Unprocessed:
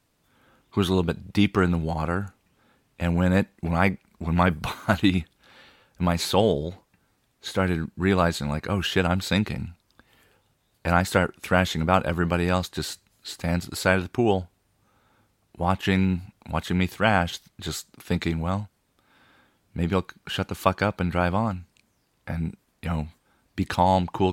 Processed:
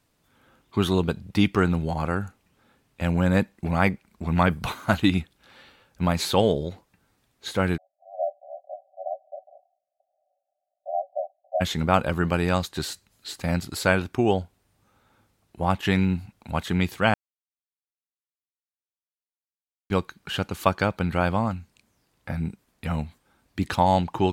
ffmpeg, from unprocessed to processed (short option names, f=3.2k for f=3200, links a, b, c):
-filter_complex "[0:a]asplit=3[a][b][c];[a]afade=t=out:st=7.76:d=0.02[d];[b]asuperpass=centerf=660:order=20:qfactor=3,afade=t=in:st=7.76:d=0.02,afade=t=out:st=11.6:d=0.02[e];[c]afade=t=in:st=11.6:d=0.02[f];[d][e][f]amix=inputs=3:normalize=0,asplit=3[g][h][i];[g]atrim=end=17.14,asetpts=PTS-STARTPTS,afade=t=out:st=17.136:d=0.004:c=hsin[j];[h]atrim=start=17.14:end=19.9,asetpts=PTS-STARTPTS,volume=0[k];[i]atrim=start=19.9,asetpts=PTS-STARTPTS,afade=t=in:d=0.004:c=hsin[l];[j][k][l]concat=n=3:v=0:a=1"